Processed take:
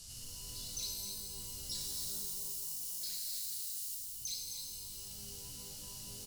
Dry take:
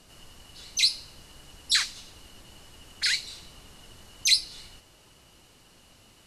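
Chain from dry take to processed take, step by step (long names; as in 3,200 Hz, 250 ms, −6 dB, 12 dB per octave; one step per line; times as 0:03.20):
0:01.75–0:03.95: spike at every zero crossing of −22.5 dBFS
drawn EQ curve 130 Hz 0 dB, 260 Hz −17 dB, 2,000 Hz −14 dB, 5,200 Hz +7 dB
downward compressor 5 to 1, threshold −49 dBFS, peak gain reduction 31 dB
single-tap delay 262 ms −7.5 dB
reverb with rising layers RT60 2.3 s, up +12 semitones, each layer −2 dB, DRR −2 dB
level +2 dB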